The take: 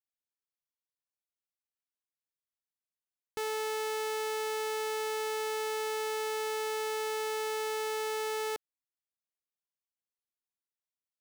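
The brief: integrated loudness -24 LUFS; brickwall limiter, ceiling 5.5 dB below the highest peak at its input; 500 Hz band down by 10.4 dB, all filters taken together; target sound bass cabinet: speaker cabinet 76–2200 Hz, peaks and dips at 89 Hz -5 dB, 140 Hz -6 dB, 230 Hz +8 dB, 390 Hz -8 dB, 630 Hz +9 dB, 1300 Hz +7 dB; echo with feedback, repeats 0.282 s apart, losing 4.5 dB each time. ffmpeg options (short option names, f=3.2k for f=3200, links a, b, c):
-af "equalizer=f=500:t=o:g=-8.5,alimiter=level_in=9dB:limit=-24dB:level=0:latency=1,volume=-9dB,highpass=f=76:w=0.5412,highpass=f=76:w=1.3066,equalizer=f=89:t=q:w=4:g=-5,equalizer=f=140:t=q:w=4:g=-6,equalizer=f=230:t=q:w=4:g=8,equalizer=f=390:t=q:w=4:g=-8,equalizer=f=630:t=q:w=4:g=9,equalizer=f=1.3k:t=q:w=4:g=7,lowpass=f=2.2k:w=0.5412,lowpass=f=2.2k:w=1.3066,aecho=1:1:282|564|846|1128|1410|1692|1974|2256|2538:0.596|0.357|0.214|0.129|0.0772|0.0463|0.0278|0.0167|0.01,volume=12.5dB"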